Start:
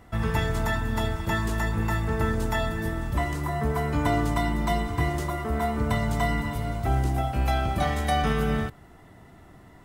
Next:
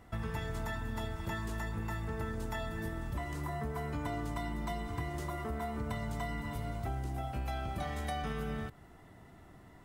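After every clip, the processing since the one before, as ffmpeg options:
ffmpeg -i in.wav -af "acompressor=threshold=-29dB:ratio=4,volume=-5.5dB" out.wav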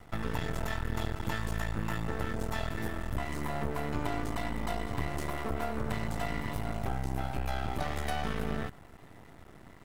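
ffmpeg -i in.wav -af "aeval=exprs='max(val(0),0)':channel_layout=same,volume=7.5dB" out.wav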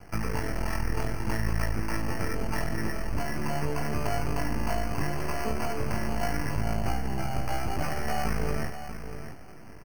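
ffmpeg -i in.wav -filter_complex "[0:a]flanger=delay=18.5:depth=3.3:speed=0.74,acrossover=split=730[link_01][link_02];[link_02]acrusher=samples=12:mix=1:aa=0.000001[link_03];[link_01][link_03]amix=inputs=2:normalize=0,aecho=1:1:640|1280:0.299|0.0448,volume=6.5dB" out.wav

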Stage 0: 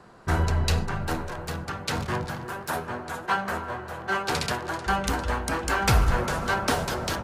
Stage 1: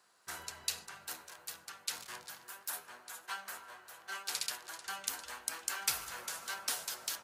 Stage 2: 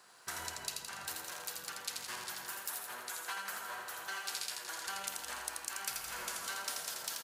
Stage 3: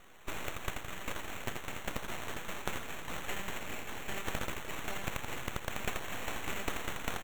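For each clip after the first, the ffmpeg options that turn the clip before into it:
ffmpeg -i in.wav -af "aderivative,volume=-2dB" out.wav
ffmpeg -i in.wav -af "acompressor=threshold=-48dB:ratio=4,aecho=1:1:83|166|249|332|415|498|581|664:0.631|0.353|0.198|0.111|0.0621|0.0347|0.0195|0.0109,volume=8dB" out.wav
ffmpeg -i in.wav -af "acrusher=samples=9:mix=1:aa=0.000001,aeval=exprs='abs(val(0))':channel_layout=same,volume=5.5dB" out.wav

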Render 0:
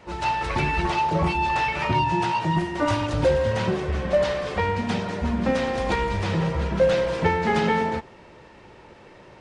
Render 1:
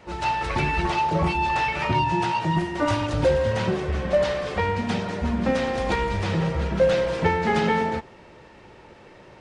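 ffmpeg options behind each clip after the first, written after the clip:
ffmpeg -i in.wav -af "bandreject=frequency=1000:width=25" out.wav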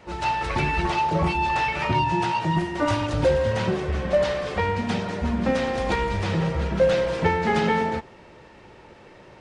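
ffmpeg -i in.wav -af anull out.wav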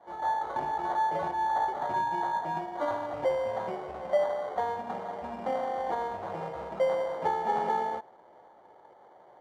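ffmpeg -i in.wav -af "acrusher=samples=17:mix=1:aa=0.000001,bandpass=frequency=760:width_type=q:width=2.6:csg=0" out.wav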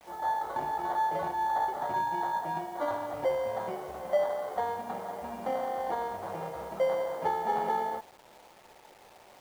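ffmpeg -i in.wav -af "acrusher=bits=8:mix=0:aa=0.000001,volume=-1dB" out.wav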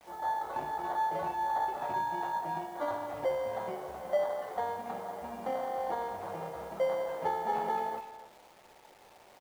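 ffmpeg -i in.wav -filter_complex "[0:a]asplit=2[link_01][link_02];[link_02]adelay=280,highpass=300,lowpass=3400,asoftclip=type=hard:threshold=-27.5dB,volume=-13dB[link_03];[link_01][link_03]amix=inputs=2:normalize=0,volume=-2.5dB" out.wav

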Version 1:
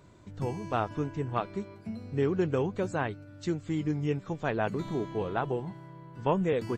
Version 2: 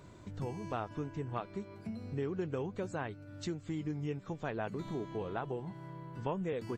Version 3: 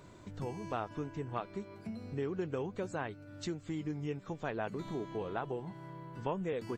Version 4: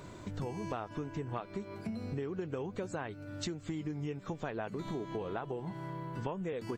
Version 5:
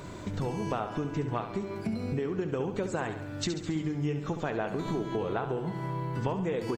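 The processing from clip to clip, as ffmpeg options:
ffmpeg -i in.wav -af "acompressor=threshold=-44dB:ratio=2,volume=2dB" out.wav
ffmpeg -i in.wav -af "equalizer=frequency=75:width_type=o:width=2.7:gain=-4,volume=1dB" out.wav
ffmpeg -i in.wav -af "acompressor=threshold=-41dB:ratio=6,volume=6.5dB" out.wav
ffmpeg -i in.wav -af "aecho=1:1:69|138|207|276|345|414|483:0.355|0.202|0.115|0.0657|0.0375|0.0213|0.0122,volume=6dB" out.wav

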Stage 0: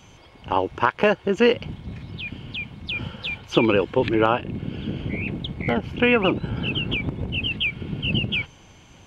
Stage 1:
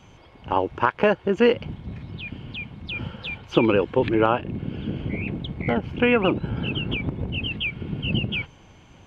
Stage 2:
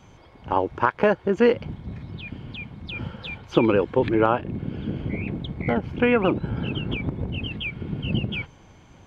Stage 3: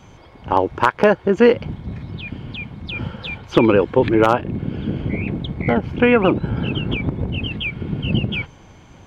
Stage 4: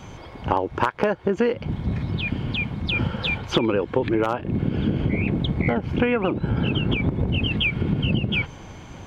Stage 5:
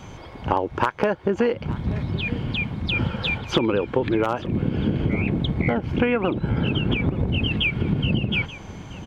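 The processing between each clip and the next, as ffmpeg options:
ffmpeg -i in.wav -af "highshelf=frequency=3800:gain=-10" out.wav
ffmpeg -i in.wav -af "equalizer=frequency=2800:width_type=o:width=0.37:gain=-6.5" out.wav
ffmpeg -i in.wav -af "aeval=exprs='0.447*(abs(mod(val(0)/0.447+3,4)-2)-1)':channel_layout=same,volume=5.5dB" out.wav
ffmpeg -i in.wav -af "acompressor=threshold=-23dB:ratio=8,volume=5dB" out.wav
ffmpeg -i in.wav -af "aecho=1:1:879:0.126" out.wav

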